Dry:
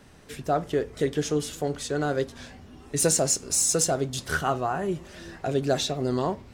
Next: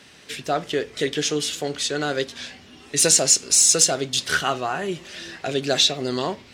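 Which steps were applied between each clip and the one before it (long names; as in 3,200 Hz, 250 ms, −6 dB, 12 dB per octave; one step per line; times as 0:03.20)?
meter weighting curve D
level +1.5 dB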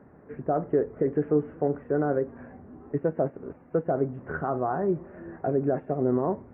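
brickwall limiter −14 dBFS, peak gain reduction 11 dB
Gaussian smoothing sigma 8.1 samples
level +3 dB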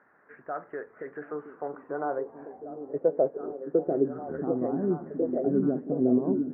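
band-pass filter sweep 1,600 Hz → 250 Hz, 0:01.08–0:04.56
echo through a band-pass that steps 722 ms, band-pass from 220 Hz, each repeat 0.7 octaves, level −1.5 dB
level +5 dB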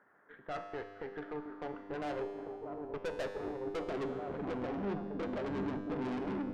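tube saturation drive 35 dB, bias 0.75
tuned comb filter 100 Hz, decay 1.9 s, mix 80%
level +12.5 dB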